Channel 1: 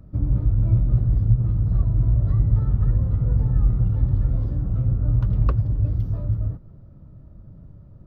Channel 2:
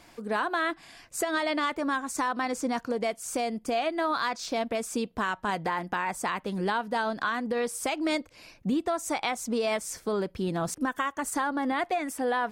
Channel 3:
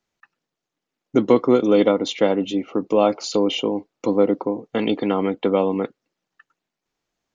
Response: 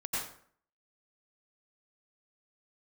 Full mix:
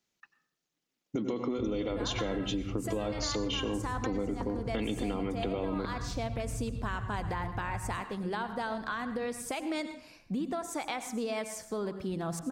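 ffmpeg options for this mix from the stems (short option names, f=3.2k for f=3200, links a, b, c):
-filter_complex "[0:a]acompressor=threshold=-19dB:ratio=6,adelay=1450,volume=-13.5dB[a];[1:a]lowshelf=f=200:g=9,adelay=1650,volume=-7dB,asplit=2[b][c];[c]volume=-13.5dB[d];[2:a]equalizer=f=850:w=0.41:g=-9,volume=1.5dB,asplit=3[e][f][g];[f]volume=-17dB[h];[g]apad=whole_len=624700[i];[b][i]sidechaincompress=threshold=-22dB:ratio=8:attack=16:release=594[j];[j][e]amix=inputs=2:normalize=0,highpass=f=180:p=1,alimiter=limit=-20dB:level=0:latency=1:release=44,volume=0dB[k];[3:a]atrim=start_sample=2205[l];[d][h]amix=inputs=2:normalize=0[m];[m][l]afir=irnorm=-1:irlink=0[n];[a][k][n]amix=inputs=3:normalize=0,acompressor=threshold=-29dB:ratio=6"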